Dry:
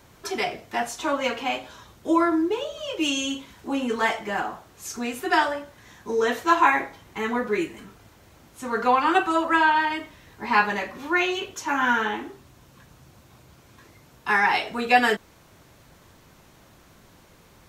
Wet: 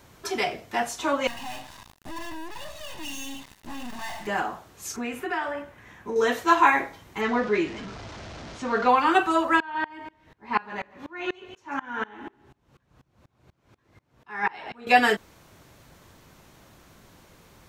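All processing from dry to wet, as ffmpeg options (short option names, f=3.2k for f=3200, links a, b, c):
-filter_complex "[0:a]asettb=1/sr,asplit=3[a][b][c];[a]atrim=end=1.274[d];[b]atrim=start=1.27:end=4.27,asetpts=PTS-STARTPTS,afade=t=in:d=0.004:c=qsin,afade=t=out:st=2.996:d=0.004:c=qsin,aeval=exprs='(tanh(79.4*val(0)+0.7)-tanh(0.7))/79.4':c=same,aecho=1:1:1.1:0.95,atrim=end_sample=132300,acrusher=bits=6:mix=0:aa=0.5[e];[c]atrim=start=4.266[f];[d][e]acrossfade=d=0.004:c1=hsin:c2=qsin[g];[g][f]acrossfade=d=0.004:c1=qsin:c2=hsin,asettb=1/sr,asplit=3[h][i][j];[h]atrim=end=4.964[k];[i]atrim=start=4.96:end=6.16,asetpts=PTS-STARTPTS,afade=t=in:d=0.004:c=qsin,afade=t=out:st=1.196:d=0.004:c=qsin,highshelf=f=3.2k:t=q:w=1.5:g=-7.5,acompressor=threshold=-27dB:ratio=3:attack=3.2:release=140:knee=1:detection=peak[l];[j]atrim=start=6.156[m];[k][l]acrossfade=d=0.004:c1=hsin:c2=qsin[n];[n][m]acrossfade=d=0.004:c1=qsin:c2=hsin,asettb=1/sr,asplit=3[o][p][q];[o]atrim=end=7.214[r];[p]atrim=start=7.21:end=8.89,asetpts=PTS-STARTPTS,afade=t=in:d=0.004:c=qsin,afade=t=out:st=1.676:d=0.004:c=qsin,aeval=exprs='val(0)+0.5*0.0158*sgn(val(0))':c=same,lowpass=f=5.9k:w=0.5412,lowpass=f=5.9k:w=1.3066,equalizer=f=660:w=6.8:g=5.5[s];[q]atrim=start=8.886[t];[r][s]acrossfade=d=0.004:c1=hsin:c2=qsin[u];[u][t]acrossfade=d=0.004:c1=qsin:c2=hsin,asettb=1/sr,asplit=3[v][w][x];[v]atrim=end=9.604[y];[w]atrim=start=9.6:end=14.87,asetpts=PTS-STARTPTS,afade=t=in:d=0.004:c=qsin,afade=t=out:st=5.266:d=0.004:c=qsin,lowpass=f=2.4k:p=1,aecho=1:1:142|284|426:0.251|0.0653|0.017,atrim=end_sample=232407,aeval=exprs='val(0)*pow(10,-27*if(lt(mod(-4.1*n/s,1),2*abs(-4.1)/1000),1-mod(-4.1*n/s,1)/(2*abs(-4.1)/1000),(mod(-4.1*n/s,1)-2*abs(-4.1)/1000)/(1-2*abs(-4.1)/1000))/20)':c=same[z];[x]atrim=start=14.866[aa];[y][z]acrossfade=d=0.004:c1=hsin:c2=qsin[ab];[ab][aa]acrossfade=d=0.004:c1=qsin:c2=hsin"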